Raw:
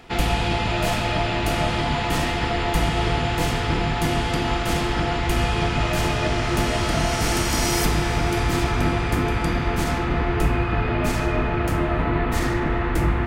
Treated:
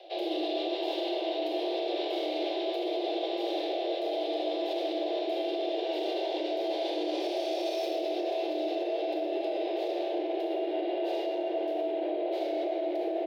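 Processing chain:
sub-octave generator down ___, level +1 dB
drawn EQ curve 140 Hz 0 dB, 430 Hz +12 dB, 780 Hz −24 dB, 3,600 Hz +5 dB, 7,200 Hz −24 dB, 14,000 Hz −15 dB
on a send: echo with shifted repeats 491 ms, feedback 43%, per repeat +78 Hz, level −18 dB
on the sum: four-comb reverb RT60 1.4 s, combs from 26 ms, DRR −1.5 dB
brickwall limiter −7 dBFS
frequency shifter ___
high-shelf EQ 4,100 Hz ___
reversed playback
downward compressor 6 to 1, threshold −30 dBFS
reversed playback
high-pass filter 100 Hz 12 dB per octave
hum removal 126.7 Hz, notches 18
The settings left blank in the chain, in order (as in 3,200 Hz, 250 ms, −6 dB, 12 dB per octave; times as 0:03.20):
2 octaves, +310 Hz, +5 dB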